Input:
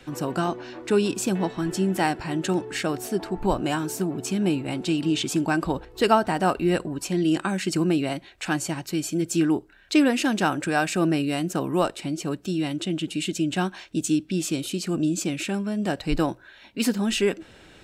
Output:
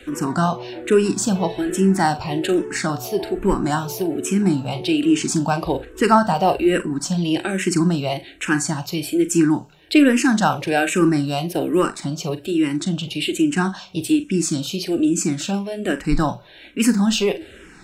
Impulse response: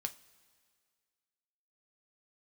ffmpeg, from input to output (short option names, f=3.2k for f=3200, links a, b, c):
-filter_complex "[0:a]acontrast=58,asplit=2[a][b];[1:a]atrim=start_sample=2205,adelay=41[c];[b][c]afir=irnorm=-1:irlink=0,volume=-10dB[d];[a][d]amix=inputs=2:normalize=0,asplit=2[e][f];[f]afreqshift=-1.2[g];[e][g]amix=inputs=2:normalize=1,volume=1.5dB"